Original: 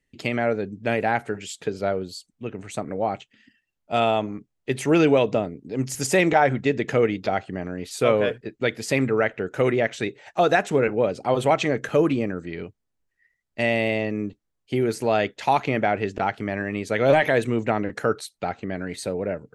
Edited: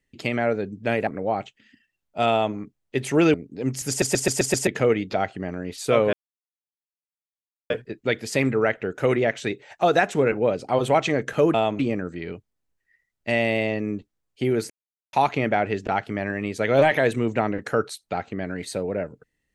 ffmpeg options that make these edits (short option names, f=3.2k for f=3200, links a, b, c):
-filter_complex "[0:a]asplit=14[a][b][c][d][e][f][g][h][i][j][k][l][m][n];[a]atrim=end=1.072[o];[b]atrim=start=2.808:end=5.082[p];[c]atrim=start=5.468:end=6.152[q];[d]atrim=start=6.018:end=6.152[r];[e]atrim=start=6.018:end=6.152[s];[f]atrim=start=6.018:end=6.152[t];[g]atrim=start=6.018:end=6.152[u];[h]atrim=start=6.018:end=6.152[v];[i]atrim=start=6.798:end=8.26,asetpts=PTS-STARTPTS,afade=t=out:st=1.458:d=0.004:c=hsin,apad=pad_dur=1.57[w];[j]atrim=start=8.26:end=12.102,asetpts=PTS-STARTPTS,afade=t=in:d=0.004:c=hsin[x];[k]atrim=start=4.048:end=4.302[y];[l]atrim=start=12.098:end=15.01,asetpts=PTS-STARTPTS,afade=t=out:st=2.908:d=0.004:c=hsin[z];[m]atrim=start=15.01:end=15.44,asetpts=PTS-STARTPTS,volume=0[aa];[n]atrim=start=15.44,asetpts=PTS-STARTPTS,afade=t=in:d=0.004:c=hsin[ab];[o][p]acrossfade=d=0.004:c1=hsin:c2=hsin[ac];[ac][q]acrossfade=d=0.004:c1=hsin:c2=hsin[ad];[ad][r]acrossfade=d=0.004:c1=hsin:c2=hsin[ae];[ae][s]acrossfade=d=0.004:c1=hsin:c2=hsin[af];[af][t]acrossfade=d=0.004:c1=hsin:c2=hsin[ag];[ag][u]acrossfade=d=0.004:c1=hsin:c2=hsin[ah];[ah][v]acrossfade=d=0.004:c1=hsin:c2=hsin[ai];[w][x]concat=n=2:v=0:a=1[aj];[ai][aj]acrossfade=d=0.004:c1=hsin:c2=hsin[ak];[ak][y]acrossfade=d=0.004:c1=hsin:c2=hsin[al];[z][aa][ab]concat=n=3:v=0:a=1[am];[al][am]acrossfade=d=0.004:c1=hsin:c2=hsin"